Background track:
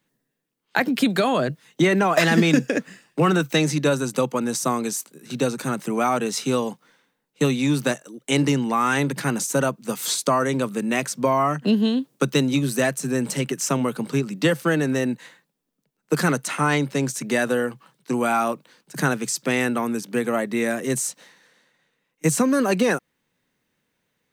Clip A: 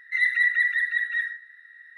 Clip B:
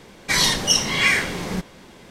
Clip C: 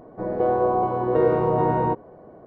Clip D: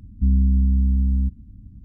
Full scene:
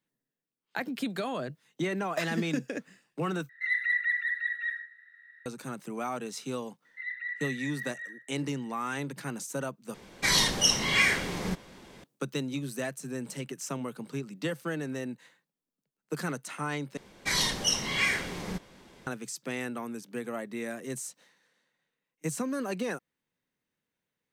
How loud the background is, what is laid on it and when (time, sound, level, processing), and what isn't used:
background track -13 dB
3.49 s: replace with A -5 dB + treble shelf 4.1 kHz -8 dB
6.85 s: add A -15 dB + low-pass 3.5 kHz 24 dB/octave
9.94 s: replace with B -5.5 dB
16.97 s: replace with B -9 dB
not used: C, D

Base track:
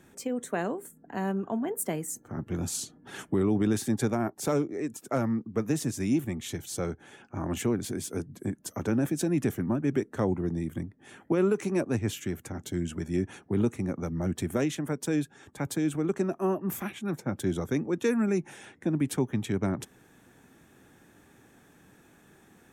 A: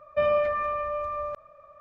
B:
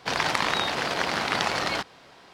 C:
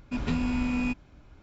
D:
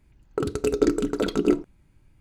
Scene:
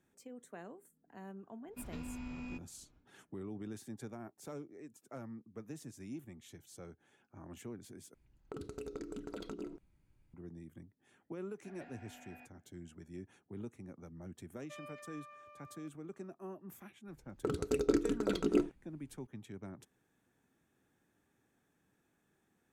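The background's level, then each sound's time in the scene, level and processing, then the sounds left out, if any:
base track -19 dB
1.65 s: add C -16.5 dB, fades 0.10 s
8.14 s: replace with D -12.5 dB + compression, threshold -27 dBFS
11.53 s: add C -9.5 dB + two resonant band-passes 1.1 kHz, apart 1.2 oct
14.53 s: add A -9 dB + differentiator
17.07 s: add D -9 dB
not used: B

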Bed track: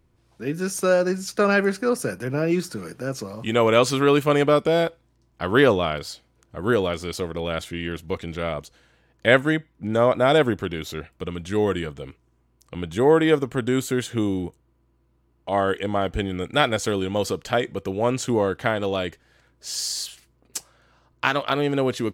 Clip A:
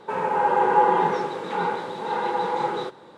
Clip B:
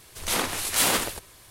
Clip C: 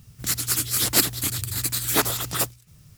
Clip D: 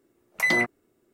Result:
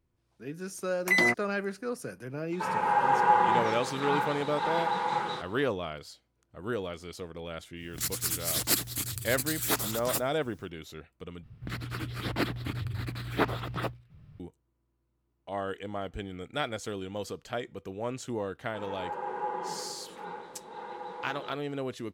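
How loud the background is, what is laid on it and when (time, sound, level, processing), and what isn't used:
bed track -12.5 dB
0.68 s: add D -1.5 dB
2.52 s: add A -0.5 dB + peaking EQ 400 Hz -11.5 dB 1.4 oct
7.74 s: add C -7.5 dB, fades 0.10 s
11.43 s: replace with C -1.5 dB + distance through air 450 m
18.66 s: add A -16 dB
not used: B

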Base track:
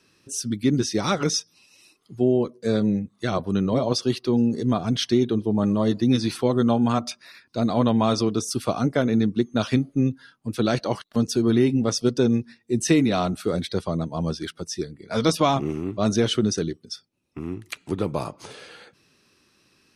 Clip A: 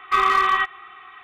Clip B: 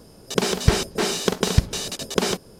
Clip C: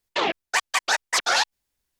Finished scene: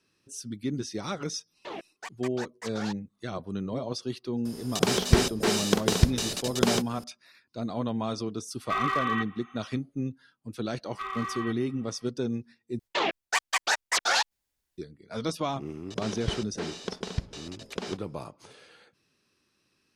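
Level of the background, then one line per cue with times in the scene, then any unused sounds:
base track -10.5 dB
1.49 s: add C -15 dB + tilt shelf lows +5.5 dB, about 720 Hz
4.45 s: add B -3 dB + tape noise reduction on one side only encoder only
8.58 s: add A -10 dB, fades 0.10 s
10.87 s: add A -17.5 dB
12.79 s: replace with C -3.5 dB
15.60 s: add B -13.5 dB + low-pass 5.5 kHz

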